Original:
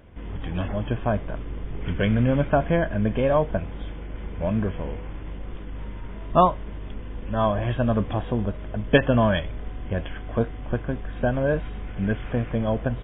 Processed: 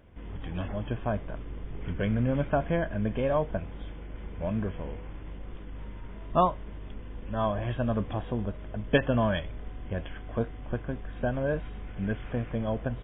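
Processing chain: 1.86–2.35 high shelf 3200 Hz -9 dB; gain -6 dB

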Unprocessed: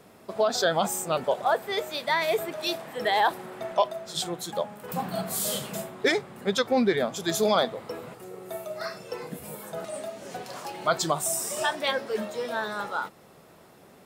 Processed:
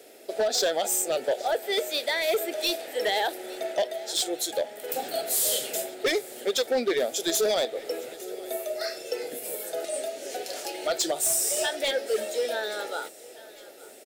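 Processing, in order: HPF 150 Hz 24 dB/oct; tone controls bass -10 dB, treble +2 dB; in parallel at +1 dB: compressor, threshold -29 dBFS, peak gain reduction 11.5 dB; on the sum: fixed phaser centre 440 Hz, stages 4; overloaded stage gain 20 dB; on a send: feedback echo 0.859 s, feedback 57%, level -21 dB

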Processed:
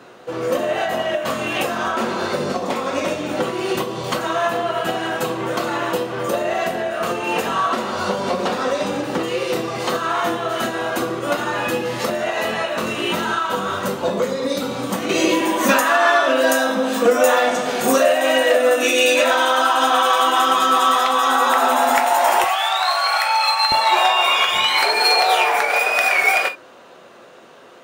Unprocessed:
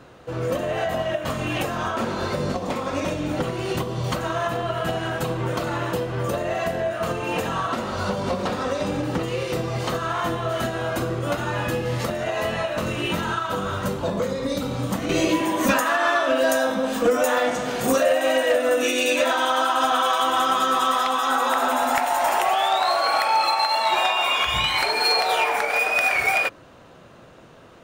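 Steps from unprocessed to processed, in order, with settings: HPF 230 Hz 12 dB/oct, from 22.44 s 1000 Hz, from 23.72 s 320 Hz; non-linear reverb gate 90 ms falling, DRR 7 dB; gain +4.5 dB

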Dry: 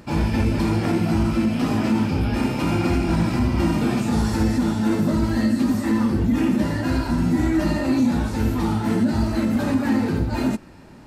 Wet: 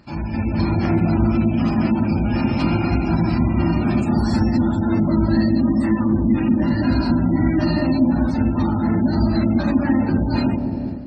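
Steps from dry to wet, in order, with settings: spectral gate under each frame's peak -30 dB strong; bell 460 Hz -11 dB 0.28 oct; analogue delay 0.195 s, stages 1024, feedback 76%, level -5.5 dB; AGC; bell 4400 Hz +7.5 dB 0.4 oct; gain -5.5 dB

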